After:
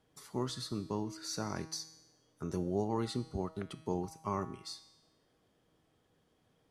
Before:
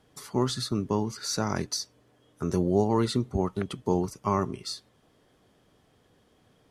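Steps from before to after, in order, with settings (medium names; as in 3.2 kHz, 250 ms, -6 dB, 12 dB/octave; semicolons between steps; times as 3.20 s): feedback comb 160 Hz, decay 1 s, harmonics all, mix 70%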